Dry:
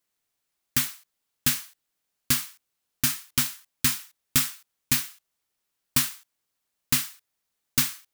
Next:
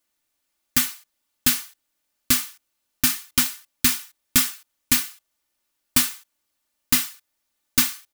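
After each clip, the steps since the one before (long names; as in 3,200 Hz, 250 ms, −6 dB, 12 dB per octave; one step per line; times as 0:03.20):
comb filter 3.4 ms, depth 56%
level +3 dB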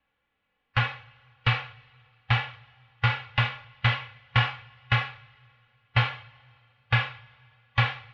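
single-sideband voice off tune −370 Hz 180–3,300 Hz
harmonic and percussive parts rebalanced harmonic +9 dB
coupled-rooms reverb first 0.5 s, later 2.6 s, from −18 dB, DRR 11.5 dB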